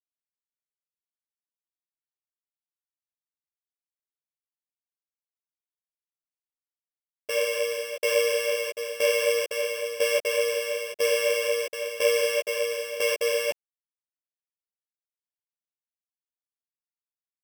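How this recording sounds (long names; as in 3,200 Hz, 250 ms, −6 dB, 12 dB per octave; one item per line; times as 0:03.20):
a buzz of ramps at a fixed pitch in blocks of 16 samples
tremolo saw down 1 Hz, depth 80%
a quantiser's noise floor 10 bits, dither none
a shimmering, thickened sound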